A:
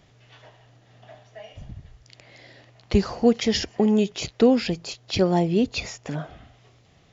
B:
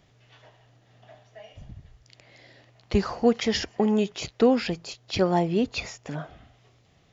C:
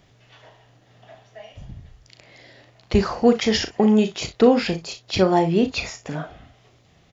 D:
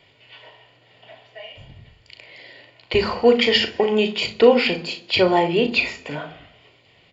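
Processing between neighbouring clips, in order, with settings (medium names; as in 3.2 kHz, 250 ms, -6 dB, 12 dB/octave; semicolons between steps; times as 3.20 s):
dynamic bell 1.2 kHz, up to +7 dB, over -38 dBFS, Q 0.72; trim -4 dB
early reflections 37 ms -9.5 dB, 60 ms -16 dB; trim +4.5 dB
reverberation RT60 0.85 s, pre-delay 3 ms, DRR 14 dB; trim -4 dB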